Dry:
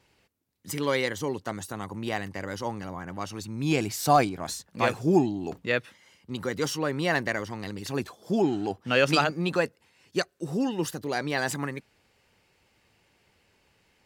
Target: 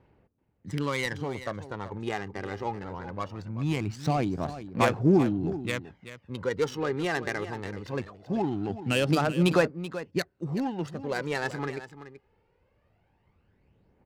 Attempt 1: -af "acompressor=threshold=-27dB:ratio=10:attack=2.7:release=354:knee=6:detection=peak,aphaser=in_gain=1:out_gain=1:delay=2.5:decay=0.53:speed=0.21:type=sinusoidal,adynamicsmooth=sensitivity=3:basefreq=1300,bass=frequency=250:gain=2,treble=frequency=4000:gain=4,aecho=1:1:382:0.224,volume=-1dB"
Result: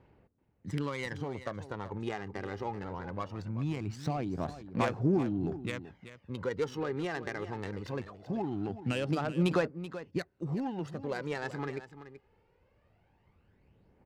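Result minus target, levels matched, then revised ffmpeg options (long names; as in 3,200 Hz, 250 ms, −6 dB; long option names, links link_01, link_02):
downward compressor: peak gain reduction +7.5 dB
-af "acompressor=threshold=-18.5dB:ratio=10:attack=2.7:release=354:knee=6:detection=peak,aphaser=in_gain=1:out_gain=1:delay=2.5:decay=0.53:speed=0.21:type=sinusoidal,adynamicsmooth=sensitivity=3:basefreq=1300,bass=frequency=250:gain=2,treble=frequency=4000:gain=4,aecho=1:1:382:0.224,volume=-1dB"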